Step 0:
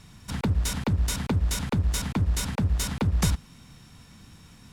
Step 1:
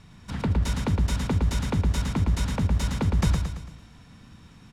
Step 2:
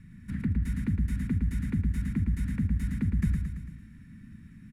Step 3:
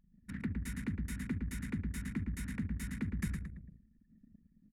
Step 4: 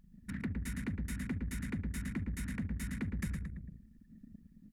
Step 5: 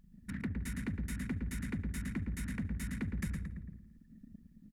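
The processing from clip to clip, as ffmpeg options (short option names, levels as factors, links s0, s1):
-filter_complex "[0:a]aemphasis=mode=reproduction:type=50kf,asplit=2[s0][s1];[s1]aecho=0:1:112|224|336|448|560|672:0.562|0.264|0.124|0.0584|0.0274|0.0129[s2];[s0][s2]amix=inputs=2:normalize=0"
-filter_complex "[0:a]firequalizer=gain_entry='entry(130,0);entry(220,5);entry(400,-14);entry(630,-30);entry(1800,0);entry(3100,-17);entry(5600,-18);entry(9800,-5)':delay=0.05:min_phase=1,asplit=2[s0][s1];[s1]acompressor=threshold=0.0224:ratio=6,volume=1.26[s2];[s0][s2]amix=inputs=2:normalize=0,volume=0.447"
-af "bass=f=250:g=-12,treble=f=4000:g=5,anlmdn=0.0158"
-filter_complex "[0:a]asplit=2[s0][s1];[s1]asoftclip=type=hard:threshold=0.0126,volume=0.447[s2];[s0][s2]amix=inputs=2:normalize=0,acompressor=threshold=0.00282:ratio=1.5,volume=1.68"
-filter_complex "[0:a]asplit=2[s0][s1];[s1]adelay=168,lowpass=f=2200:p=1,volume=0.112,asplit=2[s2][s3];[s3]adelay=168,lowpass=f=2200:p=1,volume=0.49,asplit=2[s4][s5];[s5]adelay=168,lowpass=f=2200:p=1,volume=0.49,asplit=2[s6][s7];[s7]adelay=168,lowpass=f=2200:p=1,volume=0.49[s8];[s0][s2][s4][s6][s8]amix=inputs=5:normalize=0"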